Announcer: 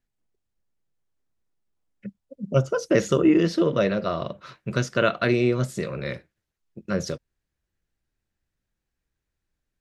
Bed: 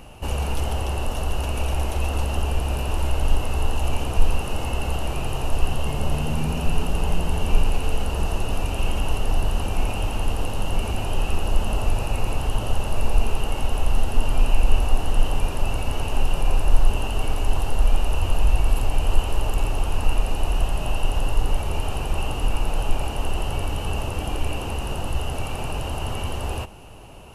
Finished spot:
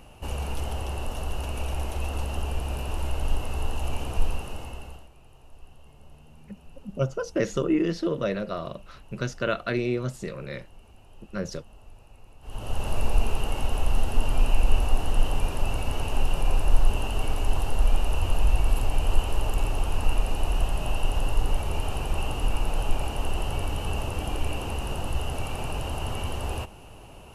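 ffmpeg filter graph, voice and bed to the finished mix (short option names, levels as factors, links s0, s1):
-filter_complex "[0:a]adelay=4450,volume=0.531[s0];[1:a]volume=8.41,afade=t=out:st=4.2:d=0.89:silence=0.0841395,afade=t=in:st=12.41:d=0.48:silence=0.0595662[s1];[s0][s1]amix=inputs=2:normalize=0"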